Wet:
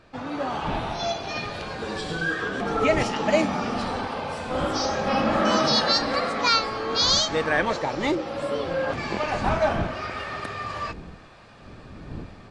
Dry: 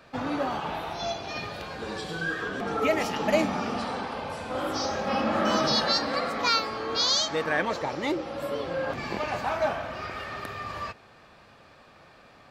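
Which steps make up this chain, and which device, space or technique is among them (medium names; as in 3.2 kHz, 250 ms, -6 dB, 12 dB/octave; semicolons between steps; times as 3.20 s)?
smartphone video outdoors (wind noise -42 dBFS; level rider gain up to 7 dB; trim -3 dB; AAC 48 kbps 22.05 kHz)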